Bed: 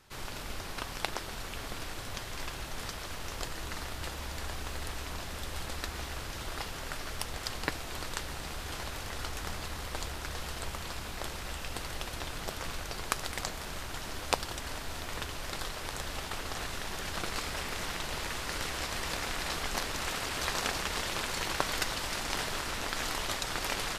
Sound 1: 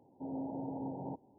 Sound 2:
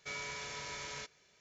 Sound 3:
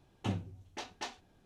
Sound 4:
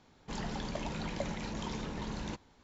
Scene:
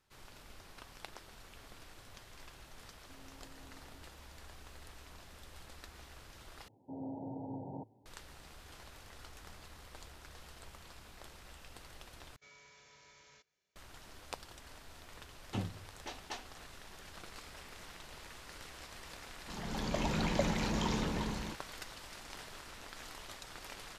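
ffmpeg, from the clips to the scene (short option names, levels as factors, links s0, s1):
-filter_complex "[1:a]asplit=2[s0][s1];[0:a]volume=0.178[s2];[s0]acompressor=threshold=0.00562:ratio=6:attack=3.2:release=140:knee=1:detection=peak[s3];[s1]equalizer=f=110:t=o:w=0.25:g=13[s4];[4:a]dynaudnorm=f=110:g=11:m=6.31[s5];[s2]asplit=3[s6][s7][s8];[s6]atrim=end=6.684[s9];[s4]atrim=end=1.38,asetpts=PTS-STARTPTS,volume=0.668[s10];[s7]atrim=start=8.056:end=12.364[s11];[2:a]atrim=end=1.4,asetpts=PTS-STARTPTS,volume=0.126[s12];[s8]atrim=start=13.756[s13];[s3]atrim=end=1.38,asetpts=PTS-STARTPTS,volume=0.251,afade=t=in:d=0.004:c=hsin,afade=t=out:st=1.376:d=0.004:c=hsin,adelay=2890[s14];[3:a]atrim=end=1.45,asetpts=PTS-STARTPTS,volume=0.708,afade=t=in:d=0.004:c=hsin,afade=t=out:st=1.446:d=0.004:c=hsin,adelay=15290[s15];[s5]atrim=end=2.63,asetpts=PTS-STARTPTS,volume=0.282,afade=t=in:d=0.004:c=hsin,afade=t=out:st=2.626:d=0.004:c=hsin,adelay=19190[s16];[s9][s10]acrossfade=d=0.004:c1=hsin:c2=hsin[s17];[s17][s11]acrossfade=d=0.004:c1=hsin:c2=hsin[s18];[s18][s12]acrossfade=d=0.004:c1=hsin:c2=hsin[s19];[s19][s13]acrossfade=d=0.004:c1=hsin:c2=hsin[s20];[s20][s14][s15][s16]amix=inputs=4:normalize=0"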